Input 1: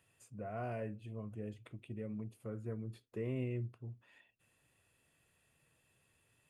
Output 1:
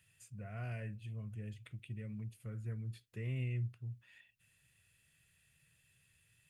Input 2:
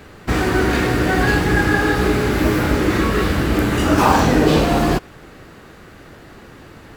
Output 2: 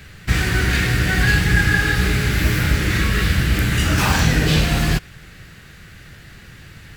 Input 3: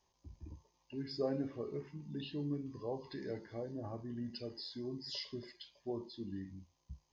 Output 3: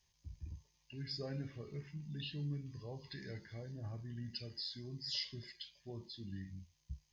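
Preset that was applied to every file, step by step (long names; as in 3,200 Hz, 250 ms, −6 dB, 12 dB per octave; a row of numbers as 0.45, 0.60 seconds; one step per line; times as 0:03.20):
flat-topped bell 530 Hz −13.5 dB 2.7 octaves
level +3.5 dB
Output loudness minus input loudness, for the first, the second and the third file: 0.0, −1.0, −2.5 LU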